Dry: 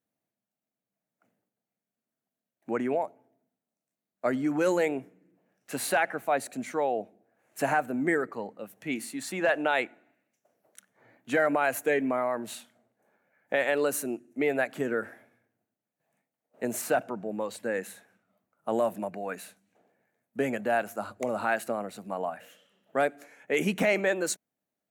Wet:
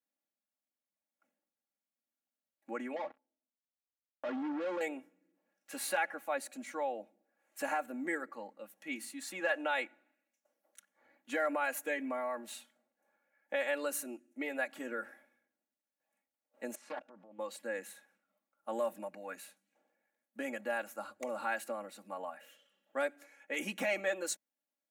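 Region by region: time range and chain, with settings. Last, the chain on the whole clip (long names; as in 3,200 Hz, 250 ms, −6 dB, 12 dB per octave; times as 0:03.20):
0:02.96–0:04.81: leveller curve on the samples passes 5 + downward compressor 4 to 1, threshold −27 dBFS + head-to-tape spacing loss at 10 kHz 31 dB
0:16.75–0:17.39: output level in coarse steps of 15 dB + high-frequency loss of the air 97 metres + highs frequency-modulated by the lows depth 0.4 ms
whole clip: high-pass filter 140 Hz; low-shelf EQ 430 Hz −9.5 dB; comb filter 3.6 ms, depth 84%; level −8 dB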